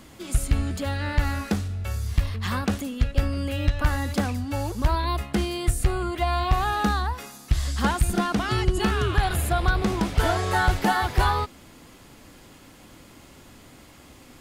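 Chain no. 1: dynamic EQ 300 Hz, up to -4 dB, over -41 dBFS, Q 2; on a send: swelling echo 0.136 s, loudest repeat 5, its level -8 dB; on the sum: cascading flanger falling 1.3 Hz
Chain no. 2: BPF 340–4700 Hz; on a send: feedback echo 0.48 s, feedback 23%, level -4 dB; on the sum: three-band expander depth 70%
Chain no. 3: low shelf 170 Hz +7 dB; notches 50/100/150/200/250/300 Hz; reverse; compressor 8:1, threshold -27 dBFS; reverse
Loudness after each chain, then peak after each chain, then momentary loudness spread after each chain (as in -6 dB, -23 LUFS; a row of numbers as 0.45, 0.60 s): -26.0, -27.0, -32.5 LUFS; -8.5, -7.0, -18.0 dBFS; 8, 16, 16 LU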